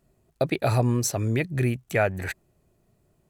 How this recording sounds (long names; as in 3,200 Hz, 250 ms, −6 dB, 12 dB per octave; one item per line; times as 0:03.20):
background noise floor −69 dBFS
spectral slope −5.5 dB per octave